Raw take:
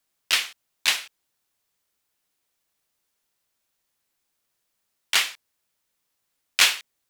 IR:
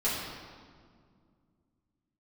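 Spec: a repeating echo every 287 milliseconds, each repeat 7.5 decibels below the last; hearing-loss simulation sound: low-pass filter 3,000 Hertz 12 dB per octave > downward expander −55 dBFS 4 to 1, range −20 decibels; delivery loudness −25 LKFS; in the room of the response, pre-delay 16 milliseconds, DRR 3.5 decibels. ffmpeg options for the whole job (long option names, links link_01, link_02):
-filter_complex "[0:a]aecho=1:1:287|574|861|1148|1435:0.422|0.177|0.0744|0.0312|0.0131,asplit=2[link_01][link_02];[1:a]atrim=start_sample=2205,adelay=16[link_03];[link_02][link_03]afir=irnorm=-1:irlink=0,volume=-12.5dB[link_04];[link_01][link_04]amix=inputs=2:normalize=0,lowpass=3000,agate=range=-20dB:threshold=-55dB:ratio=4,volume=0.5dB"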